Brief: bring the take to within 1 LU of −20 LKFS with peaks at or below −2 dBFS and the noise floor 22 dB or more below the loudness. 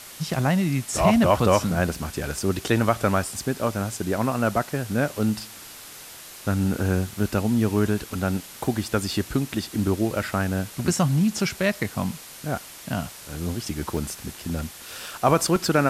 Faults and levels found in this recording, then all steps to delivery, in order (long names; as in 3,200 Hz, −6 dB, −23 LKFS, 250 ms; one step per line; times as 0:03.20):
number of dropouts 8; longest dropout 1.3 ms; background noise floor −42 dBFS; target noise floor −47 dBFS; integrated loudness −24.5 LKFS; sample peak −5.5 dBFS; target loudness −20.0 LKFS
→ repair the gap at 0:01.34/0:02.59/0:03.97/0:07.18/0:08.74/0:13.97/0:14.95/0:15.56, 1.3 ms
noise reduction from a noise print 6 dB
level +4.5 dB
brickwall limiter −2 dBFS